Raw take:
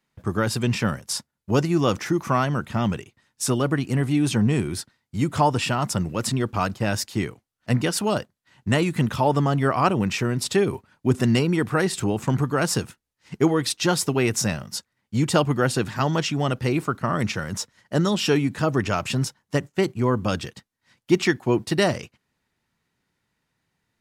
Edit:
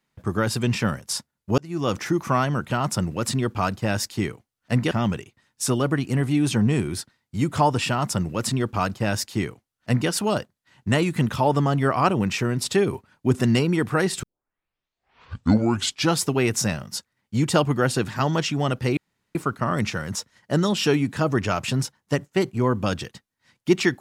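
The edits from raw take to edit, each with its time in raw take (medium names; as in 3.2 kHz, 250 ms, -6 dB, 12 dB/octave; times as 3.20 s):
1.58–1.99 s: fade in
5.69–7.89 s: copy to 2.71 s
12.03 s: tape start 1.99 s
16.77 s: insert room tone 0.38 s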